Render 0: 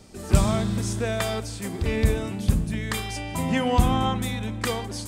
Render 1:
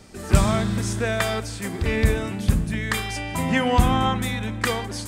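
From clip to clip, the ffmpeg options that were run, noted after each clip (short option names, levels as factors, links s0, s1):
-af "equalizer=f=1700:t=o:w=1.1:g=5.5,volume=1.19"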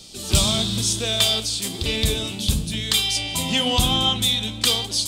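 -af "highshelf=f=2500:t=q:w=3:g=11.5,aeval=exprs='1.5*sin(PI/2*1.58*val(0)/1.5)':c=same,flanger=delay=5.8:depth=8.5:regen=69:speed=1:shape=sinusoidal,volume=0.501"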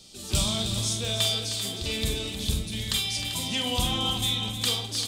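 -af "aecho=1:1:45|311|363|392|699:0.447|0.299|0.106|0.316|0.188,volume=0.398"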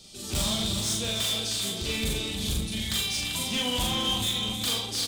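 -filter_complex "[0:a]asoftclip=type=hard:threshold=0.0531,asplit=2[s0][s1];[s1]adelay=40,volume=0.75[s2];[s0][s2]amix=inputs=2:normalize=0"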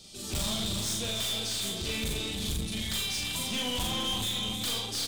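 -af "aeval=exprs='(tanh(22.4*val(0)+0.3)-tanh(0.3))/22.4':c=same"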